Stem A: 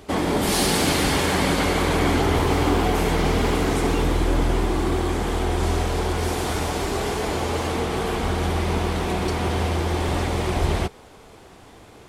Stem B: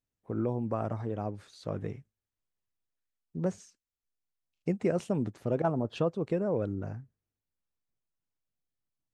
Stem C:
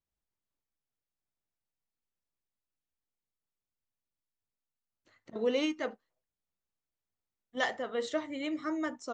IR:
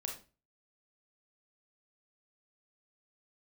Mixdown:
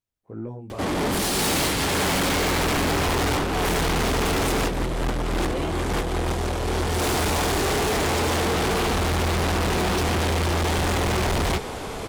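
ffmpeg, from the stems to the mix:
-filter_complex "[0:a]aeval=exprs='0.398*sin(PI/2*3.16*val(0)/0.398)':c=same,adelay=700,volume=1.19[s0];[1:a]flanger=delay=17:depth=3.5:speed=2.1,volume=0.944,asplit=2[s1][s2];[2:a]volume=0.944[s3];[s2]apad=whole_len=563923[s4];[s0][s4]sidechaincompress=threshold=0.00631:ratio=6:attack=20:release=173[s5];[s5][s1][s3]amix=inputs=3:normalize=0,asoftclip=type=tanh:threshold=0.0841"

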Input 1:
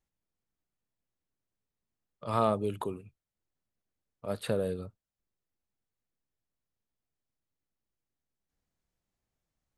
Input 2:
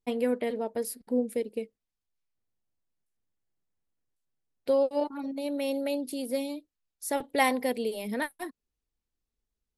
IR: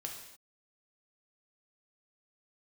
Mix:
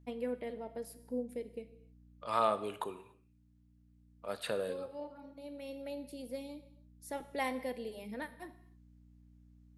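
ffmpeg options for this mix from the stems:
-filter_complex "[0:a]highpass=f=1100:p=1,volume=1,asplit=3[s0][s1][s2];[s1]volume=0.531[s3];[1:a]aeval=exprs='val(0)+0.00398*(sin(2*PI*60*n/s)+sin(2*PI*2*60*n/s)/2+sin(2*PI*3*60*n/s)/3+sin(2*PI*4*60*n/s)/4+sin(2*PI*5*60*n/s)/5)':c=same,volume=0.211,asplit=2[s4][s5];[s5]volume=0.631[s6];[s2]apad=whole_len=431206[s7];[s4][s7]sidechaincompress=threshold=0.00355:ratio=8:attack=16:release=1330[s8];[2:a]atrim=start_sample=2205[s9];[s3][s6]amix=inputs=2:normalize=0[s10];[s10][s9]afir=irnorm=-1:irlink=0[s11];[s0][s8][s11]amix=inputs=3:normalize=0,highshelf=f=5300:g=-6"

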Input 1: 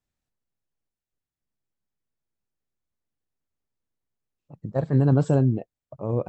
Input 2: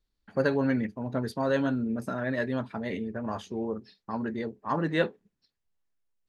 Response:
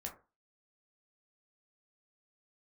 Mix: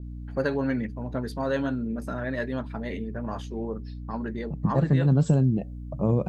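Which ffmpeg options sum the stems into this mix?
-filter_complex "[0:a]equalizer=f=180:w=1.7:g=12.5,aeval=exprs='val(0)+0.0112*(sin(2*PI*60*n/s)+sin(2*PI*2*60*n/s)/2+sin(2*PI*3*60*n/s)/3+sin(2*PI*4*60*n/s)/4+sin(2*PI*5*60*n/s)/5)':c=same,adynamicequalizer=threshold=0.00631:dfrequency=2100:dqfactor=0.7:tfrequency=2100:tqfactor=0.7:attack=5:release=100:ratio=0.375:range=4:mode=boostabove:tftype=highshelf,volume=1.33,asplit=2[s0][s1];[s1]volume=0.119[s2];[1:a]volume=0.944,asplit=2[s3][s4];[s4]apad=whole_len=277298[s5];[s0][s5]sidechaincompress=threshold=0.0316:ratio=8:attack=32:release=165[s6];[2:a]atrim=start_sample=2205[s7];[s2][s7]afir=irnorm=-1:irlink=0[s8];[s6][s3][s8]amix=inputs=3:normalize=0,acompressor=threshold=0.126:ratio=6"

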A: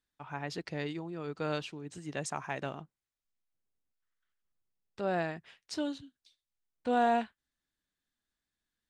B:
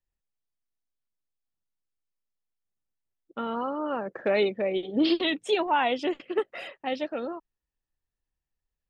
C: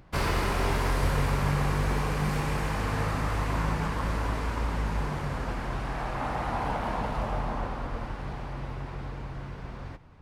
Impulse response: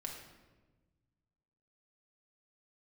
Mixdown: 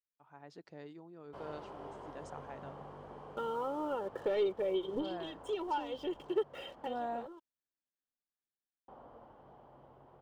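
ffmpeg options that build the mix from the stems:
-filter_complex "[0:a]lowpass=2900,aemphasis=mode=production:type=bsi,dynaudnorm=f=160:g=5:m=2.11,volume=0.178,asplit=2[s0][s1];[1:a]asoftclip=type=tanh:threshold=0.106,aecho=1:1:2.2:0.73,aeval=exprs='sgn(val(0))*max(abs(val(0))-0.00237,0)':c=same,volume=0.944[s2];[2:a]bandpass=f=670:t=q:w=1.1:csg=0,adelay=1200,volume=0.237,asplit=3[s3][s4][s5];[s3]atrim=end=7.27,asetpts=PTS-STARTPTS,afade=t=out:st=7.266:d=0.004:c=hsin[s6];[s4]atrim=start=7.27:end=8.88,asetpts=PTS-STARTPTS,volume=0[s7];[s5]atrim=start=8.88,asetpts=PTS-STARTPTS,afade=t=in:d=0.004:c=hsin[s8];[s6][s7][s8]concat=n=3:v=0:a=1[s9];[s1]apad=whole_len=392344[s10];[s2][s10]sidechaincompress=threshold=0.00316:ratio=8:attack=16:release=598[s11];[s11][s9]amix=inputs=2:normalize=0,equalizer=f=3100:t=o:w=0.33:g=15,acompressor=threshold=0.0126:ratio=1.5,volume=1[s12];[s0][s12]amix=inputs=2:normalize=0,acrossover=split=3300[s13][s14];[s14]acompressor=threshold=0.00398:ratio=4:attack=1:release=60[s15];[s13][s15]amix=inputs=2:normalize=0,equalizer=f=2500:w=0.81:g=-12.5"

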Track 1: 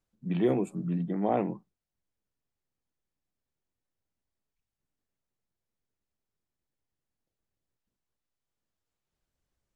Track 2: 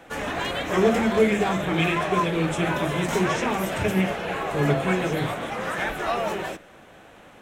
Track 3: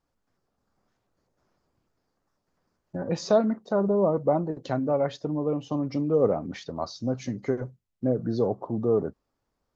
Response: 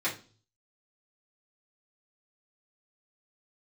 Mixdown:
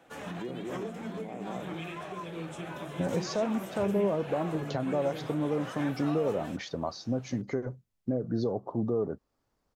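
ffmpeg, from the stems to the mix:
-filter_complex "[0:a]volume=0.335,asplit=3[s0][s1][s2];[s1]volume=0.562[s3];[1:a]equalizer=f=2000:w=2.2:g=-3.5,volume=0.282[s4];[2:a]alimiter=limit=0.0794:level=0:latency=1:release=384,adelay=50,volume=1.19[s5];[s2]apad=whole_len=326943[s6];[s4][s6]sidechaincompress=threshold=0.0126:ratio=8:attack=11:release=173[s7];[s0][s7]amix=inputs=2:normalize=0,highpass=f=83:w=0.5412,highpass=f=83:w=1.3066,alimiter=level_in=1.78:limit=0.0631:level=0:latency=1:release=434,volume=0.562,volume=1[s8];[s3]aecho=0:1:223:1[s9];[s5][s8][s9]amix=inputs=3:normalize=0"

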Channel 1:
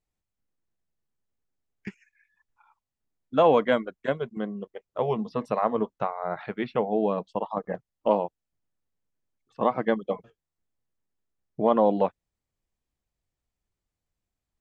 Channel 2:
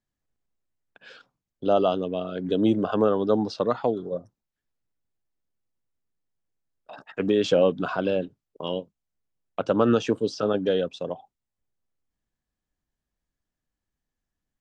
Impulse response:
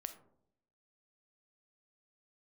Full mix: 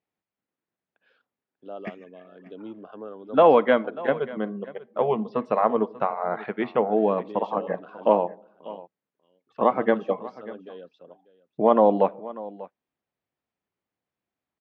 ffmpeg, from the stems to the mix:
-filter_complex "[0:a]volume=1.19,asplit=3[s0][s1][s2];[s1]volume=0.447[s3];[s2]volume=0.158[s4];[1:a]volume=0.141,asplit=2[s5][s6];[s6]volume=0.1[s7];[2:a]atrim=start_sample=2205[s8];[s3][s8]afir=irnorm=-1:irlink=0[s9];[s4][s7]amix=inputs=2:normalize=0,aecho=0:1:591:1[s10];[s0][s5][s9][s10]amix=inputs=4:normalize=0,highpass=200,lowpass=2800"

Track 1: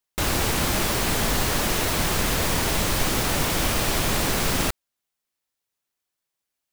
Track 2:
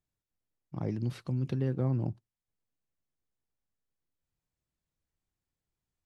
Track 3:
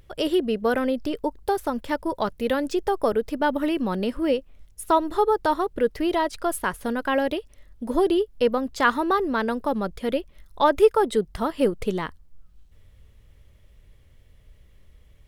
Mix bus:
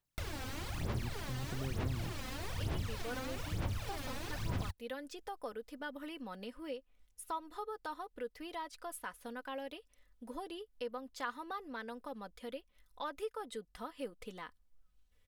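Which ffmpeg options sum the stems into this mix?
-filter_complex "[0:a]acrossover=split=760|5500[s0][s1][s2];[s0]acompressor=threshold=0.0282:ratio=4[s3];[s1]acompressor=threshold=0.0224:ratio=4[s4];[s2]acompressor=threshold=0.00631:ratio=4[s5];[s3][s4][s5]amix=inputs=3:normalize=0,aphaser=in_gain=1:out_gain=1:delay=3.9:decay=0.74:speed=1.1:type=sinusoidal,equalizer=f=97:t=o:w=1.3:g=12.5,volume=0.299[s6];[1:a]volume=0.708[s7];[2:a]lowshelf=f=490:g=-10.5,aecho=1:1:4:0.54,adelay=2400,volume=0.266[s8];[s6][s7][s8]amix=inputs=3:normalize=0,acompressor=threshold=0.00355:ratio=1.5"

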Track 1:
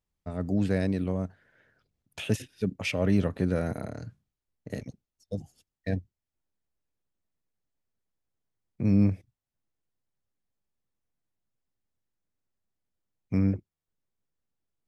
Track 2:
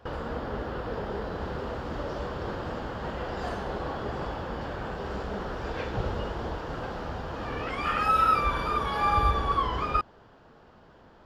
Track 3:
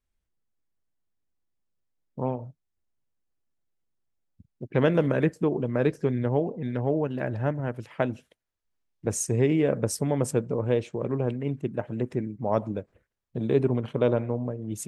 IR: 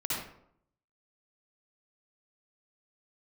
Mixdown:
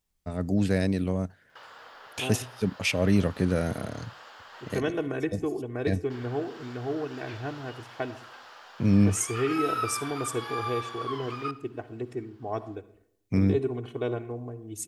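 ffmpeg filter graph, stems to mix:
-filter_complex "[0:a]volume=1.19[s0];[1:a]highpass=1100,adelay=1500,volume=0.422,asplit=3[s1][s2][s3];[s1]atrim=end=4.77,asetpts=PTS-STARTPTS,afade=t=out:st=4.766:d=0.004:c=hsin[s4];[s2]atrim=start=4.77:end=6.1,asetpts=PTS-STARTPTS,volume=0[s5];[s3]atrim=start=6.1,asetpts=PTS-STARTPTS,afade=t=in:d=0.004:c=hsin[s6];[s4][s5][s6]concat=n=3:v=0:a=1,asplit=2[s7][s8];[s8]volume=0.0794[s9];[2:a]aecho=1:1:2.7:0.84,volume=0.355,asplit=2[s10][s11];[s11]volume=0.106[s12];[3:a]atrim=start_sample=2205[s13];[s9][s12]amix=inputs=2:normalize=0[s14];[s14][s13]afir=irnorm=-1:irlink=0[s15];[s0][s7][s10][s15]amix=inputs=4:normalize=0,highshelf=f=3300:g=7.5"

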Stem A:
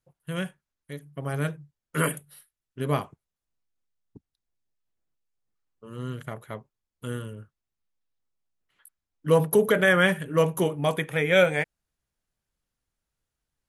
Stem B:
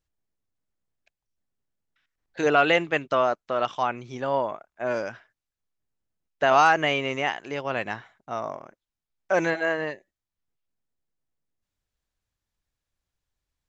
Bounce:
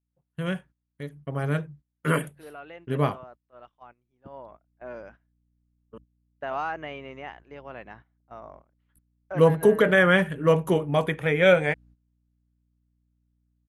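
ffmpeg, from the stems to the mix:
-filter_complex "[0:a]adelay=100,volume=1.26,asplit=3[s0][s1][s2];[s0]atrim=end=5.98,asetpts=PTS-STARTPTS,afade=t=out:st=5.976:d=0.004:c=hsin[s3];[s1]atrim=start=5.98:end=8.28,asetpts=PTS-STARTPTS,volume=0[s4];[s2]atrim=start=8.28,asetpts=PTS-STARTPTS,afade=t=in:d=0.004:c=hsin[s5];[s3][s4][s5]concat=n=3:v=0:a=1[s6];[1:a]aemphasis=mode=reproduction:type=50kf,aeval=exprs='val(0)+0.00631*(sin(2*PI*60*n/s)+sin(2*PI*2*60*n/s)/2+sin(2*PI*3*60*n/s)/3+sin(2*PI*4*60*n/s)/4+sin(2*PI*5*60*n/s)/5)':c=same,volume=0.266,afade=t=in:st=4.2:d=0.6:silence=0.281838[s7];[s6][s7]amix=inputs=2:normalize=0,agate=range=0.2:threshold=0.00398:ratio=16:detection=peak,lowpass=f=2800:p=1"

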